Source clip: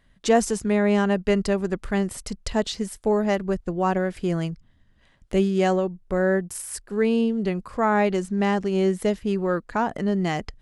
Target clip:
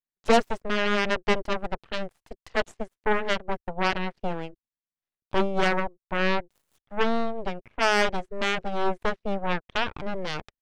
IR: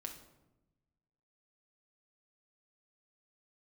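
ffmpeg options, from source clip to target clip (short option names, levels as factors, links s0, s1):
-filter_complex "[0:a]acrossover=split=170 3200:gain=0.178 1 0.126[s0][s1][s2];[s0][s1][s2]amix=inputs=3:normalize=0,aeval=exprs='0.473*(cos(1*acos(clip(val(0)/0.473,-1,1)))-cos(1*PI/2))+0.133*(cos(3*acos(clip(val(0)/0.473,-1,1)))-cos(3*PI/2))+0.0188*(cos(5*acos(clip(val(0)/0.473,-1,1)))-cos(5*PI/2))+0.0237*(cos(7*acos(clip(val(0)/0.473,-1,1)))-cos(7*PI/2))+0.0422*(cos(8*acos(clip(val(0)/0.473,-1,1)))-cos(8*PI/2))':c=same,asoftclip=type=tanh:threshold=0.141,volume=2.24"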